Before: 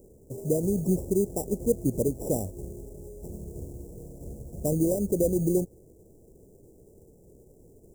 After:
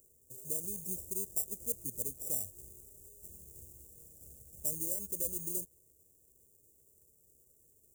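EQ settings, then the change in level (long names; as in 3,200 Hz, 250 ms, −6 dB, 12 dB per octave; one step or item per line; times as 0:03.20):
first-order pre-emphasis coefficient 0.97
parametric band 75 Hz +13 dB 2.1 octaves
0.0 dB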